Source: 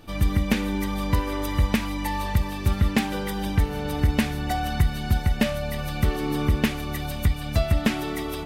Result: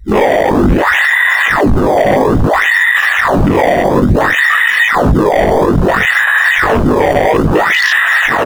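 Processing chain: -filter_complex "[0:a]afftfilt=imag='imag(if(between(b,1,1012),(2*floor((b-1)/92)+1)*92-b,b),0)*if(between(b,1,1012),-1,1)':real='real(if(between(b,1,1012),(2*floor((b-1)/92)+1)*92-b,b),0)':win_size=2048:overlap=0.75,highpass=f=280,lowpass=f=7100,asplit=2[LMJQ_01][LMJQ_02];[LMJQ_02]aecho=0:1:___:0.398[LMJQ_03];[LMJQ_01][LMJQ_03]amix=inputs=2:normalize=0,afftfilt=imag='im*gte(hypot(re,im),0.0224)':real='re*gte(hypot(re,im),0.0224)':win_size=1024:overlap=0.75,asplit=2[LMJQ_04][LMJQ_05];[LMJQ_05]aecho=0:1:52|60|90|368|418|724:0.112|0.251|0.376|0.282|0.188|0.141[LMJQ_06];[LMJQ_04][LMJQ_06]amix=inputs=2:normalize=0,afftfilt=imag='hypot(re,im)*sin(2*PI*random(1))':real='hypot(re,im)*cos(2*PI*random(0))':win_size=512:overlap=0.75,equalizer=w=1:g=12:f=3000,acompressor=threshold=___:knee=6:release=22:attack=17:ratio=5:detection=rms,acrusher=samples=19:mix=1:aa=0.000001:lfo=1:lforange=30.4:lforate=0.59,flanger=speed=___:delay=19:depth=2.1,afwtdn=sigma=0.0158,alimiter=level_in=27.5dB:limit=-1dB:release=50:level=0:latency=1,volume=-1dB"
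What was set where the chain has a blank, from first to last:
533, -29dB, 0.4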